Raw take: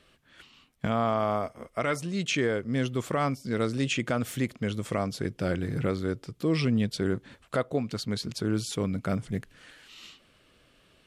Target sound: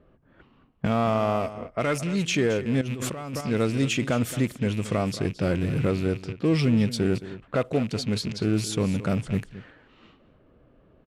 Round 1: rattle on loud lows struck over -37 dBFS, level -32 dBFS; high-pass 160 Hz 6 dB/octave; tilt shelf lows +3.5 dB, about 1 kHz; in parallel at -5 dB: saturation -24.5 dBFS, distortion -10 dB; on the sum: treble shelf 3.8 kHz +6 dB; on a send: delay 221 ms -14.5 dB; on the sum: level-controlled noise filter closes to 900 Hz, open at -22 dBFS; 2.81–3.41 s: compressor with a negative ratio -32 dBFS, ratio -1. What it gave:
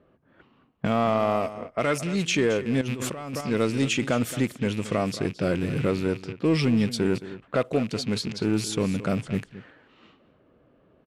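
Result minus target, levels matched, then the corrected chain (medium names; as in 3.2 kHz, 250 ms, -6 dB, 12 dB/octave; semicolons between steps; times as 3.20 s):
saturation: distortion -6 dB; 125 Hz band -2.5 dB
rattle on loud lows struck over -37 dBFS, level -32 dBFS; tilt shelf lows +3.5 dB, about 1 kHz; in parallel at -5 dB: saturation -33.5 dBFS, distortion -4 dB; on the sum: treble shelf 3.8 kHz +6 dB; on a send: delay 221 ms -14.5 dB; on the sum: level-controlled noise filter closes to 900 Hz, open at -22 dBFS; 2.81–3.41 s: compressor with a negative ratio -32 dBFS, ratio -1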